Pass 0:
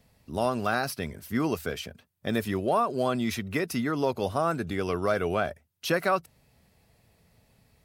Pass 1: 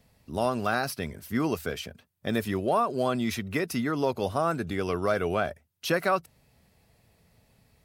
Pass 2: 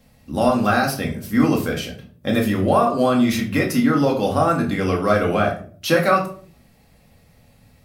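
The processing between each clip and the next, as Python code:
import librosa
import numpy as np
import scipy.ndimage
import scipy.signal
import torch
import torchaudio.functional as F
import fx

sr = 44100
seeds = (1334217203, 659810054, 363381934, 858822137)

y1 = x
y2 = fx.room_shoebox(y1, sr, seeds[0], volume_m3=390.0, walls='furnished', distance_m=2.2)
y2 = y2 * 10.0 ** (5.0 / 20.0)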